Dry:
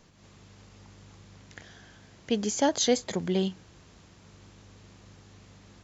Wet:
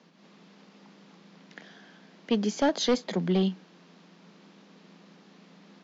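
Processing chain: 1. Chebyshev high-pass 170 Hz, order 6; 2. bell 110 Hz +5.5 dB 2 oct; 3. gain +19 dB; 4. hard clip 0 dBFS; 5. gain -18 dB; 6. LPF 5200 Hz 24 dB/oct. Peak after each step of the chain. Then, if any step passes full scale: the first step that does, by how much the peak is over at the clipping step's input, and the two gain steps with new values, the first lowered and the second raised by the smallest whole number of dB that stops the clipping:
-12.5, -11.5, +7.5, 0.0, -18.0, -17.0 dBFS; step 3, 7.5 dB; step 3 +11 dB, step 5 -10 dB

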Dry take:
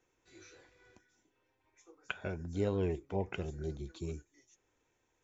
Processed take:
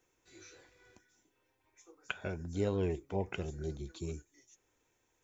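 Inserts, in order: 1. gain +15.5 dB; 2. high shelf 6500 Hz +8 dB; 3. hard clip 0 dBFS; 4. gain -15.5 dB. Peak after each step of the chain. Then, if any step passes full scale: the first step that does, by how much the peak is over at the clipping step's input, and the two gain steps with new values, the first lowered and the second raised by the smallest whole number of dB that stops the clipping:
-2.5, -2.0, -2.0, -17.5 dBFS; no overload

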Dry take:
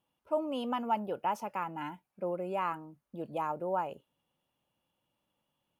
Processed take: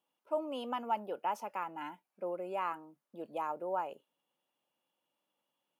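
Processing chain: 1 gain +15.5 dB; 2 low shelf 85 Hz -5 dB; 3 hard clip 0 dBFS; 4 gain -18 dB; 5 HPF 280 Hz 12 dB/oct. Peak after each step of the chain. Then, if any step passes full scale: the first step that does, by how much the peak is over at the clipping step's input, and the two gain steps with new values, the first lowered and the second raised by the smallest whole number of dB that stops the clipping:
-3.5, -3.5, -3.5, -21.5, -21.5 dBFS; no overload

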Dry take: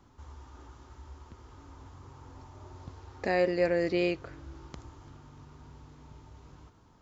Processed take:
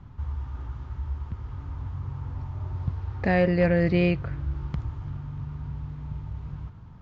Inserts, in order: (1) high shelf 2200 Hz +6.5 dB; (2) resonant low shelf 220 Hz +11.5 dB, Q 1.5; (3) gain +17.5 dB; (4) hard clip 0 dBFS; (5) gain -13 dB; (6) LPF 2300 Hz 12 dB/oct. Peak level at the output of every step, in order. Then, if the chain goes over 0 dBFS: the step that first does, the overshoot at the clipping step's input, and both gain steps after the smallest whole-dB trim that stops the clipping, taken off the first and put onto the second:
-13.0, -13.0, +4.5, 0.0, -13.0, -12.5 dBFS; step 3, 4.5 dB; step 3 +12.5 dB, step 5 -8 dB

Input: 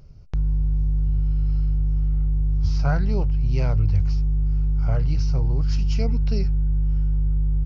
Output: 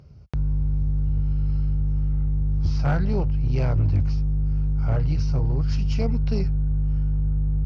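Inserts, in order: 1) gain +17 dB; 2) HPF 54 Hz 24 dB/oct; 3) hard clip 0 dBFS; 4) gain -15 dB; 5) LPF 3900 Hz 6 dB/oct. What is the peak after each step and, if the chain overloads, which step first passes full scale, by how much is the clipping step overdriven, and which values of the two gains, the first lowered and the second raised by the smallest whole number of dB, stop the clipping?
+8.0, +7.5, 0.0, -15.0, -15.0 dBFS; step 1, 7.5 dB; step 1 +9 dB, step 4 -7 dB

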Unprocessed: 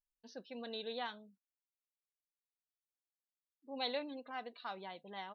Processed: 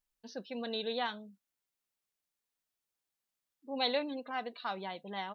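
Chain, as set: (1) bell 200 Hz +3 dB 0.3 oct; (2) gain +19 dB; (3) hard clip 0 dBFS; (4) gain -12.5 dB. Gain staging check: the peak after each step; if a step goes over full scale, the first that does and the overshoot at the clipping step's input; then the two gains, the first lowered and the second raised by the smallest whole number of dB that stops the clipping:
-24.5, -5.5, -5.5, -18.0 dBFS; no overload

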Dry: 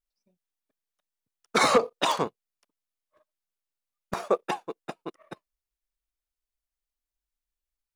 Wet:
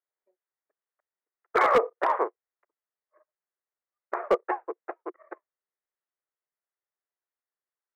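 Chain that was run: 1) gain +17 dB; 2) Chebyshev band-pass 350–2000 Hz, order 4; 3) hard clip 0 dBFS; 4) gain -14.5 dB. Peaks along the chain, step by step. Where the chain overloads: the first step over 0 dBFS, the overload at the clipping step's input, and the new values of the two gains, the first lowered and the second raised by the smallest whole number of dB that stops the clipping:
+6.5, +7.5, 0.0, -14.5 dBFS; step 1, 7.5 dB; step 1 +9 dB, step 4 -6.5 dB

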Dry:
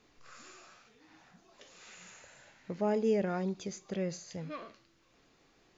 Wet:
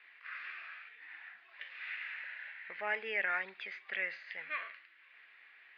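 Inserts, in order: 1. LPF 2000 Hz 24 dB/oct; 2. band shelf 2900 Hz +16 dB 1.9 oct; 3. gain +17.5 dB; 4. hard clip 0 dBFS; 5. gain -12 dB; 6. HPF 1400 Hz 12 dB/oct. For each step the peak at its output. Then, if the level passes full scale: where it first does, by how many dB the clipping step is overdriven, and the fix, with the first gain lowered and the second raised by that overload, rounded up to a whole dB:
-20.5, -19.5, -2.0, -2.0, -14.0, -20.5 dBFS; no overload

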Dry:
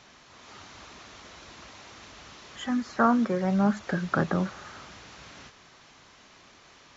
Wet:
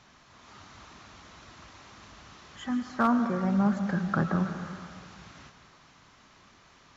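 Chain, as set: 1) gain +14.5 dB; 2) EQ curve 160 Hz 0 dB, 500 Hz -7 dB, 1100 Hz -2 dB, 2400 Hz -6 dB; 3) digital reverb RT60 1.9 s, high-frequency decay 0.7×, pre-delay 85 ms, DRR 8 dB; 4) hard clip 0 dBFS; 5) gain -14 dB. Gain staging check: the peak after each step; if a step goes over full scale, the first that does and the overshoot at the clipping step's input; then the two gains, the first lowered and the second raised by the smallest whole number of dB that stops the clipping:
+7.0, +3.5, +3.5, 0.0, -14.0 dBFS; step 1, 3.5 dB; step 1 +10.5 dB, step 5 -10 dB

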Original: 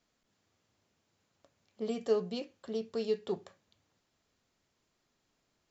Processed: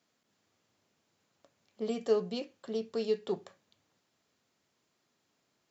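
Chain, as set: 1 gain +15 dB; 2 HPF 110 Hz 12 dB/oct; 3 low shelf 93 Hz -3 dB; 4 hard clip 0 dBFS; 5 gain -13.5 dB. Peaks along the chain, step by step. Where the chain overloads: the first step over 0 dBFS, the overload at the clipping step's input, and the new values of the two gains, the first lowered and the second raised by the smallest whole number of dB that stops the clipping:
-3.0, -2.5, -2.5, -2.5, -16.0 dBFS; no overload

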